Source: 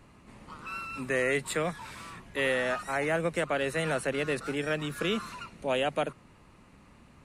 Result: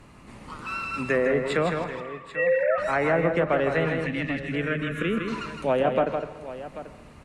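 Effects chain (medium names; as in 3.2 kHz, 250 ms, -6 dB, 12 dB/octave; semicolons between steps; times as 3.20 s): 1.84–2.78 s: formants replaced by sine waves; low-pass that closes with the level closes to 1.1 kHz, closed at -23.5 dBFS; 4.41–5.28 s: static phaser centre 2 kHz, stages 4; 3.90–4.52 s: time-frequency box 320–1700 Hz -27 dB; multi-tap echo 160/788 ms -6/-14 dB; reverberation RT60 1.1 s, pre-delay 117 ms, DRR 13 dB; trim +6 dB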